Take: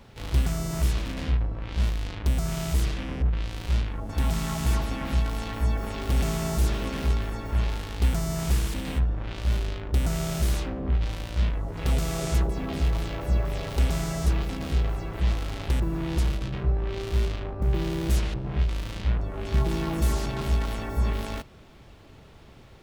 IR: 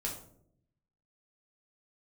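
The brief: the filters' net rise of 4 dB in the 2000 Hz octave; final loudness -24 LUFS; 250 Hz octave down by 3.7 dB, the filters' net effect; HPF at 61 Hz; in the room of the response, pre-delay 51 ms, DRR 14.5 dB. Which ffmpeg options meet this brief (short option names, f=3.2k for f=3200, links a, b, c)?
-filter_complex "[0:a]highpass=61,equalizer=f=250:t=o:g=-6,equalizer=f=2k:t=o:g=5,asplit=2[a][b];[1:a]atrim=start_sample=2205,adelay=51[c];[b][c]afir=irnorm=-1:irlink=0,volume=-16dB[d];[a][d]amix=inputs=2:normalize=0,volume=6dB"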